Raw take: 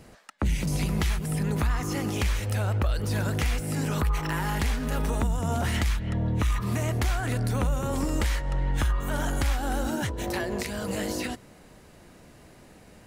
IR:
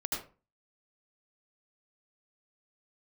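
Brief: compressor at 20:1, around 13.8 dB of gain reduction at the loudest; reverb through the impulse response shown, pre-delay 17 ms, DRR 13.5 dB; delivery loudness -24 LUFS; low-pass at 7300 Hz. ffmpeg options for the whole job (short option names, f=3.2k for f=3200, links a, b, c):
-filter_complex "[0:a]lowpass=7.3k,acompressor=threshold=-35dB:ratio=20,asplit=2[a][b];[1:a]atrim=start_sample=2205,adelay=17[c];[b][c]afir=irnorm=-1:irlink=0,volume=-17.5dB[d];[a][d]amix=inputs=2:normalize=0,volume=15.5dB"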